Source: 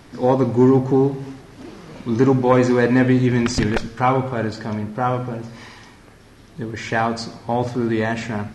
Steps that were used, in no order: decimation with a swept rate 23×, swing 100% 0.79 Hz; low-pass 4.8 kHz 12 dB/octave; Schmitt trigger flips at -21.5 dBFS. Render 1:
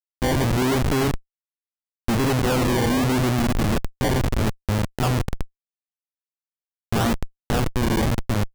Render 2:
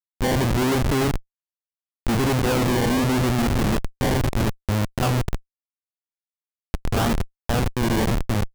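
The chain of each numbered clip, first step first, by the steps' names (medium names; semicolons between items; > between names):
low-pass > decimation with a swept rate > Schmitt trigger; decimation with a swept rate > low-pass > Schmitt trigger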